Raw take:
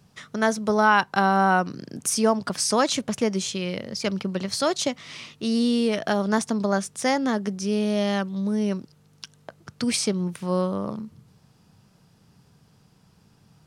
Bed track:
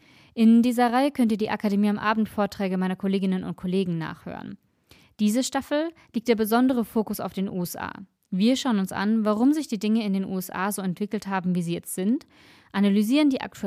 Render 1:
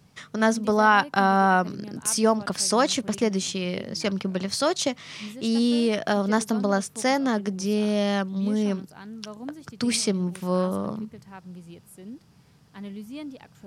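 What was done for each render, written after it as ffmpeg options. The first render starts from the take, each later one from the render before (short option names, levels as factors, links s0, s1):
-filter_complex "[1:a]volume=0.141[s0];[0:a][s0]amix=inputs=2:normalize=0"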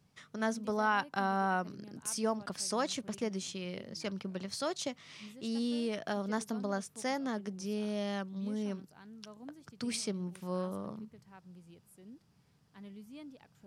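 -af "volume=0.251"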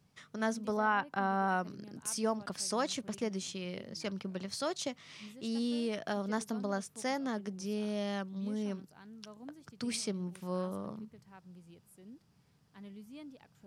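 -filter_complex "[0:a]asettb=1/sr,asplit=3[s0][s1][s2];[s0]atrim=end=0.774[s3];[s1]atrim=start=0.77:end=1.48,asetpts=PTS-STARTPTS,afade=t=in:d=0.004:c=qsin,afade=t=out:st=0.706:d=0.004:c=qsin,acrossover=split=3000[s4][s5];[s5]acompressor=threshold=0.001:ratio=4:attack=1:release=60[s6];[s4][s6]amix=inputs=2:normalize=0[s7];[s2]atrim=start=1.476[s8];[s3][s7]acrossfade=d=0.004:c1=hsin:c2=qsin[s9];[s9][s8]acrossfade=d=0.004:c1=qsin:c2=hsin"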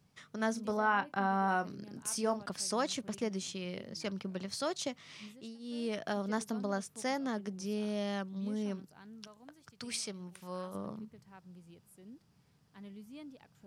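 -filter_complex "[0:a]asettb=1/sr,asplit=3[s0][s1][s2];[s0]atrim=end=0.534[s3];[s1]atrim=start=0.53:end=2.41,asetpts=PTS-STARTPTS,afade=t=in:d=0.004:c=qsin,afade=t=out:st=1.876:d=0.004:c=qsin,asplit=2[s4][s5];[s5]adelay=30,volume=0.282[s6];[s4][s6]amix=inputs=2:normalize=0,atrim=end_sample=82908[s7];[s2]atrim=start=2.406[s8];[s3][s7]acrossfade=d=0.004:c1=hsin:c2=qsin[s9];[s9][s8]acrossfade=d=0.004:c1=qsin:c2=hsin,asettb=1/sr,asplit=3[s10][s11][s12];[s10]atrim=end=9.274[s13];[s11]atrim=start=9.27:end=10.75,asetpts=PTS-STARTPTS,afade=t=in:d=0.004:c=qsin,afade=t=out:st=1.476:d=0.004:c=qsin,equalizer=f=250:t=o:w=2.4:g=-9[s14];[s12]atrim=start=10.746[s15];[s13][s14]acrossfade=d=0.004:c1=hsin:c2=qsin[s16];[s16][s15]acrossfade=d=0.004:c1=qsin:c2=hsin,asplit=2[s17][s18];[s17]atrim=end=5.58,asetpts=PTS-STARTPTS,afade=t=out:st=5.24:d=0.34:silence=0.0841395[s19];[s18]atrim=start=5.58,asetpts=PTS-STARTPTS,afade=t=in:d=0.34:silence=0.0841395[s20];[s19][s20]concat=n=2:v=0:a=1"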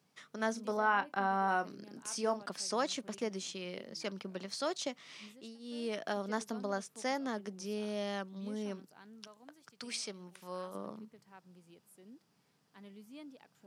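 -filter_complex "[0:a]highpass=240,acrossover=split=8200[s0][s1];[s1]acompressor=threshold=0.00141:ratio=4:attack=1:release=60[s2];[s0][s2]amix=inputs=2:normalize=0"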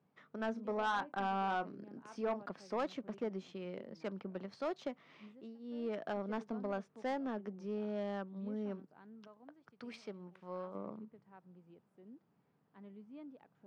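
-af "adynamicsmooth=sensitivity=1:basefreq=1600,asoftclip=type=tanh:threshold=0.0398"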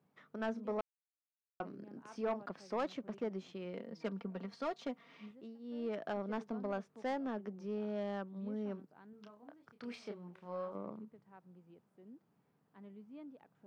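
-filter_complex "[0:a]asettb=1/sr,asplit=3[s0][s1][s2];[s0]atrim=end=3.734[s3];[s1]atrim=start=3.73:end=5.31,asetpts=PTS-STARTPTS,afade=t=in:d=0.004:c=qsin,afade=t=out:st=1.576:d=0.004:c=qsin,aecho=1:1:4.3:0.58,atrim=end_sample=69678[s4];[s2]atrim=start=5.306[s5];[s3][s4]acrossfade=d=0.004:c1=hsin:c2=qsin[s6];[s6][s5]acrossfade=d=0.004:c1=qsin:c2=hsin,asettb=1/sr,asplit=3[s7][s8][s9];[s7]atrim=end=9.104[s10];[s8]atrim=start=9.1:end=10.73,asetpts=PTS-STARTPTS,afade=t=in:d=0.004:c=qsin,afade=t=out:st=1.626:d=0.004:c=qsin,asplit=2[s11][s12];[s12]adelay=29,volume=0.562[s13];[s11][s13]amix=inputs=2:normalize=0,atrim=end_sample=71883[s14];[s9]atrim=start=10.726[s15];[s10][s14]acrossfade=d=0.004:c1=hsin:c2=qsin[s16];[s16][s15]acrossfade=d=0.004:c1=qsin:c2=hsin,asplit=3[s17][s18][s19];[s17]atrim=end=0.81,asetpts=PTS-STARTPTS,afade=t=out:st=0.806:d=0.004:c=hsin[s20];[s18]atrim=start=0.81:end=1.6,asetpts=PTS-STARTPTS,volume=0[s21];[s19]atrim=start=1.6,asetpts=PTS-STARTPTS,afade=t=in:d=0.004:c=hsin[s22];[s20][s21][s22]concat=n=3:v=0:a=1"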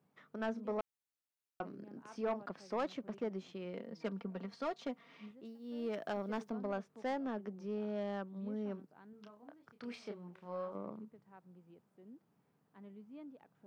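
-filter_complex "[0:a]asettb=1/sr,asplit=3[s0][s1][s2];[s0]atrim=end=5.454[s3];[s1]atrim=start=5.45:end=6.5,asetpts=PTS-STARTPTS,afade=t=in:d=0.004:c=qsin,afade=t=out:st=1.046:d=0.004:c=qsin,highshelf=f=5600:g=11[s4];[s2]atrim=start=6.496[s5];[s3][s4]acrossfade=d=0.004:c1=hsin:c2=qsin[s6];[s6][s5]acrossfade=d=0.004:c1=qsin:c2=hsin"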